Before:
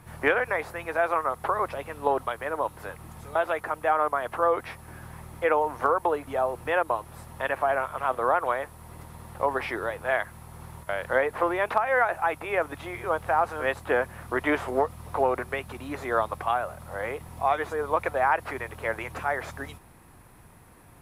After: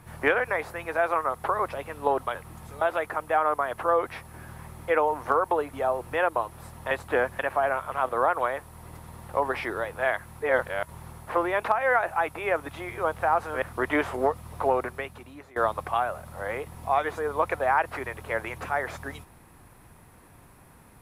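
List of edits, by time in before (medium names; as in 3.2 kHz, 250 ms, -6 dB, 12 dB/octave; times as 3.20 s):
2.35–2.89 s: delete
10.46–11.32 s: reverse
13.68–14.16 s: move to 7.45 s
15.29–16.10 s: fade out, to -21.5 dB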